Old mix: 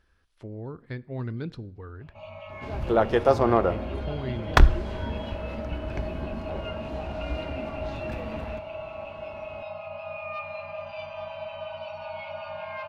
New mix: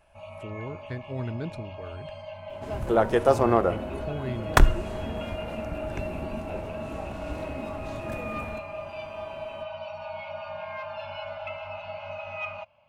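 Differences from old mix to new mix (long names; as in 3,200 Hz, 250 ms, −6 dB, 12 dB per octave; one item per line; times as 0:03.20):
first sound: entry −2.00 s
second sound: add parametric band 61 Hz −8 dB 0.44 octaves
master: add high shelf with overshoot 6,200 Hz +9 dB, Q 1.5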